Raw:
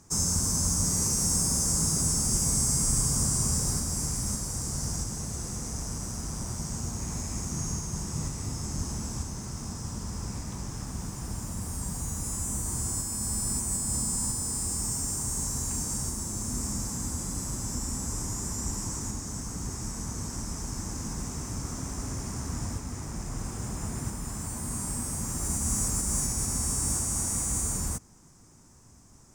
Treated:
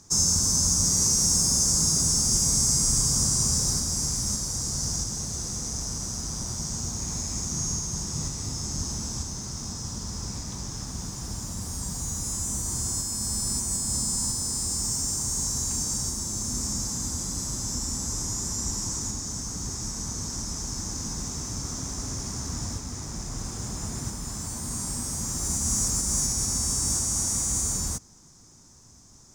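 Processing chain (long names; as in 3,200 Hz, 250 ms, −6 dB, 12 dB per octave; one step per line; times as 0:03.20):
flat-topped bell 4,800 Hz +8 dB 1.2 octaves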